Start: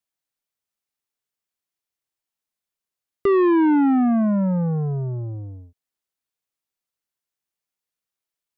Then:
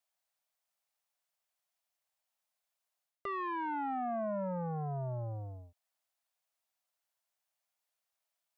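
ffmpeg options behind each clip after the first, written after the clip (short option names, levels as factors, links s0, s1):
-af "lowshelf=f=490:t=q:w=3:g=-9,areverse,acompressor=threshold=0.0178:ratio=5,areverse"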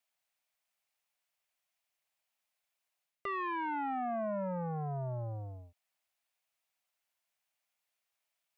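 -af "equalizer=f=2400:w=1.6:g=6"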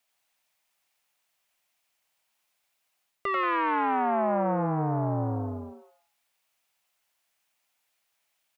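-filter_complex "[0:a]asplit=6[s0][s1][s2][s3][s4][s5];[s1]adelay=89,afreqshift=150,volume=0.631[s6];[s2]adelay=178,afreqshift=300,volume=0.234[s7];[s3]adelay=267,afreqshift=450,volume=0.0861[s8];[s4]adelay=356,afreqshift=600,volume=0.032[s9];[s5]adelay=445,afreqshift=750,volume=0.0119[s10];[s0][s6][s7][s8][s9][s10]amix=inputs=6:normalize=0,volume=2.51"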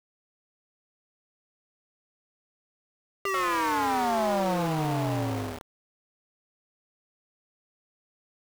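-af "aeval=exprs='val(0)*gte(abs(val(0)),0.0299)':c=same"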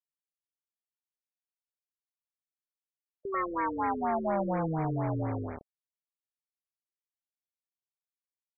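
-af "afftfilt=real='re*lt(b*sr/1024,510*pow(2500/510,0.5+0.5*sin(2*PI*4.2*pts/sr)))':imag='im*lt(b*sr/1024,510*pow(2500/510,0.5+0.5*sin(2*PI*4.2*pts/sr)))':win_size=1024:overlap=0.75,volume=0.75"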